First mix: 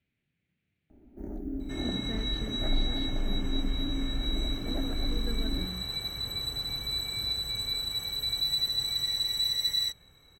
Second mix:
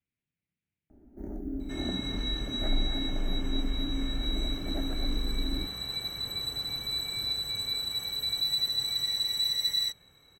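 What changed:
speech -11.5 dB; second sound: add low shelf 68 Hz -12 dB

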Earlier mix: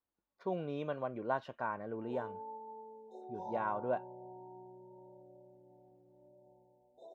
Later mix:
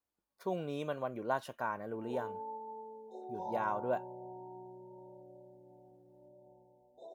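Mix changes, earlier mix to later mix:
speech: remove air absorption 210 m; background +3.0 dB

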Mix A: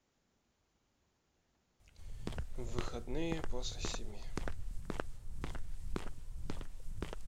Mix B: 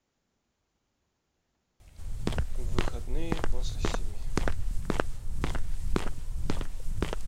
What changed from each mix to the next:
background +11.5 dB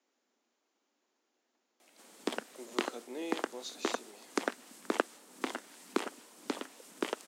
master: add steep high-pass 240 Hz 48 dB/oct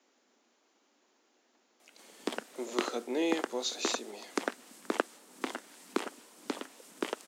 speech +9.5 dB

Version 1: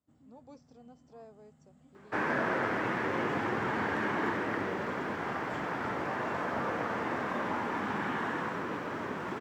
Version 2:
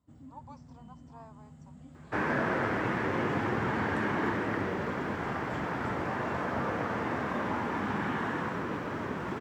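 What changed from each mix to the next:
speech: add resonant high-pass 980 Hz, resonance Q 11; first sound +7.0 dB; master: add low shelf 140 Hz +11.5 dB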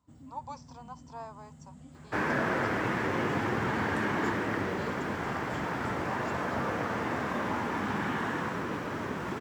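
speech +8.5 dB; master: add high shelf 4500 Hz +8.5 dB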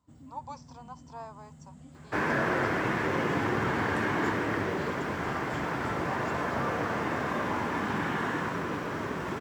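reverb: on, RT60 0.70 s

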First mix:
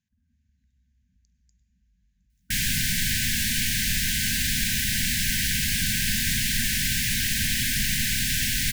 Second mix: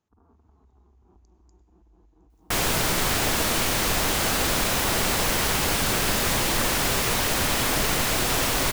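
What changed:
first sound +8.0 dB; master: remove brick-wall FIR band-stop 260–1500 Hz

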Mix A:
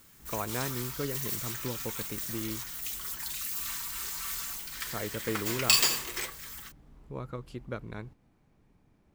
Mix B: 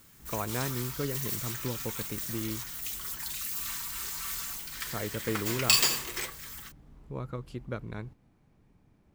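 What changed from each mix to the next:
master: add bell 110 Hz +3 dB 2.2 oct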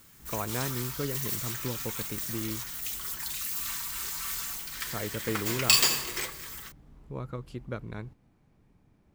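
reverb: on, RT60 2.8 s

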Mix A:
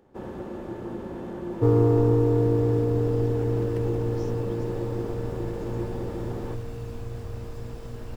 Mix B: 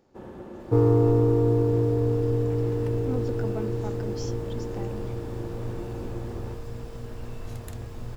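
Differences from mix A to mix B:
speech +12.0 dB; first sound -5.0 dB; second sound: entry -0.90 s

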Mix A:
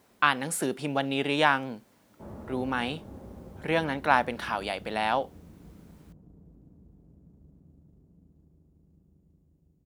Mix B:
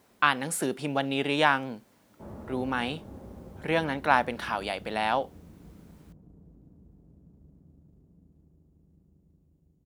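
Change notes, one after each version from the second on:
none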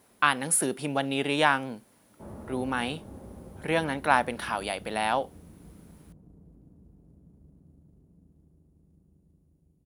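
master: add bell 10000 Hz +14 dB 0.23 oct

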